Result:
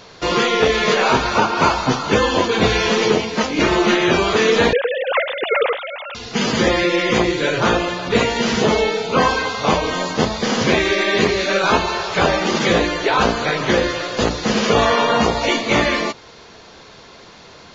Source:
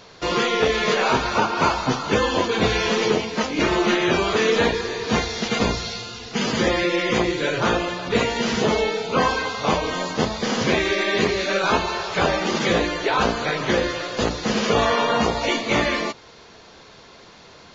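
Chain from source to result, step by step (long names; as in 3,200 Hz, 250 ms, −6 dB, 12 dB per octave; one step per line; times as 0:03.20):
0:04.73–0:06.15: three sine waves on the formant tracks
level +4 dB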